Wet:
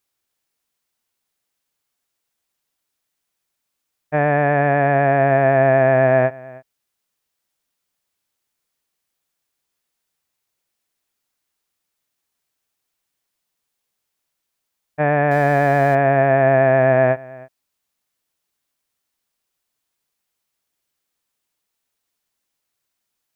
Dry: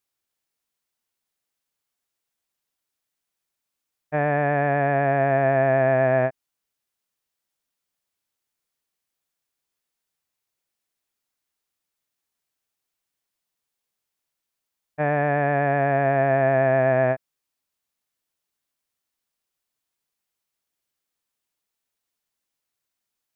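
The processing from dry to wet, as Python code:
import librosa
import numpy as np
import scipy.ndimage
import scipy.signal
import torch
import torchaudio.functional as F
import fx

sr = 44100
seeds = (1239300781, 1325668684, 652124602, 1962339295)

y = fx.zero_step(x, sr, step_db=-36.5, at=(15.31, 15.95))
y = y + 10.0 ** (-22.0 / 20.0) * np.pad(y, (int(318 * sr / 1000.0), 0))[:len(y)]
y = y * 10.0 ** (5.0 / 20.0)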